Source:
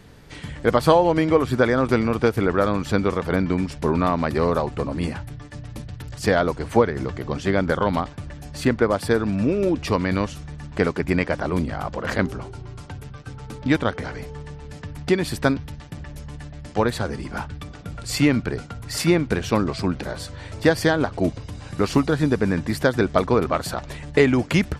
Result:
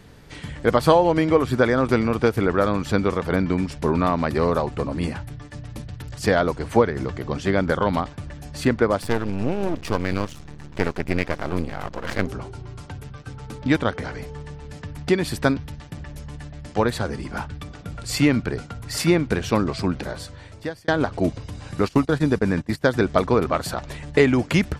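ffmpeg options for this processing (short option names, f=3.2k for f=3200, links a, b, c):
-filter_complex "[0:a]asettb=1/sr,asplit=3[a][b][c];[a]atrim=end=9.024[d];[b]atrim=start=9.02:end=12.27,asetpts=PTS-STARTPTS,afade=t=in:d=0.004:c=qsin,afade=t=out:st=3.246:d=0.004:c=qsin,aeval=exprs='max(val(0),0)':c=same[e];[c]atrim=start=12.266[f];[d][e]acrossfade=d=0.004:c1=hsin:c2=qsin[g];[g][f]acrossfade=d=0.004:c1=qsin:c2=hsin,asplit=3[h][i][j];[h]afade=t=out:st=21.83:d=0.02[k];[i]agate=range=-19dB:threshold=-26dB:ratio=16:release=100:detection=peak,afade=t=in:st=21.83:d=0.02,afade=t=out:st=22.83:d=0.02[l];[j]afade=t=in:st=22.83:d=0.02[m];[k][l][m]amix=inputs=3:normalize=0,asplit=2[n][o];[n]atrim=end=20.88,asetpts=PTS-STARTPTS,afade=t=out:st=20.03:d=0.85[p];[o]atrim=start=20.88,asetpts=PTS-STARTPTS,afade=t=in:d=0.004:c=hsin[q];[p][q]concat=n=2:v=0:a=1"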